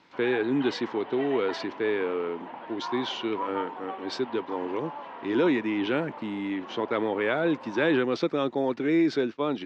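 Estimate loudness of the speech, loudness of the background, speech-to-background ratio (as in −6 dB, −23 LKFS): −28.0 LKFS, −40.0 LKFS, 12.0 dB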